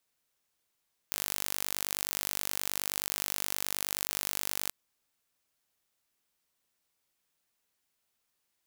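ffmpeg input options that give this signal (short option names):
-f lavfi -i "aevalsrc='0.531*eq(mod(n,891),0)':d=3.59:s=44100"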